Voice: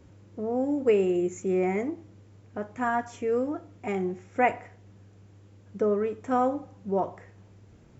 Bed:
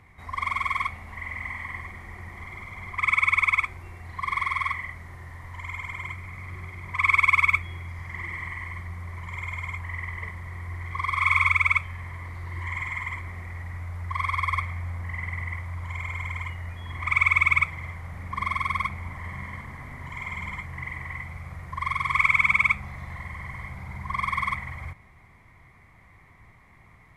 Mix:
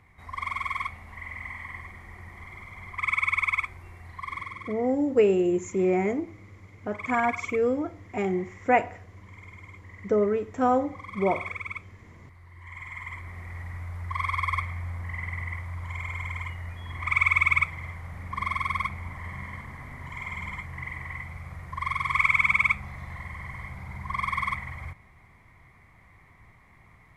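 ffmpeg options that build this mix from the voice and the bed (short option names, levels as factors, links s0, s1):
-filter_complex "[0:a]adelay=4300,volume=1.26[s0];[1:a]volume=2.82,afade=t=out:st=4.06:d=0.52:silence=0.298538,afade=t=in:st=12.58:d=1.01:silence=0.223872[s1];[s0][s1]amix=inputs=2:normalize=0"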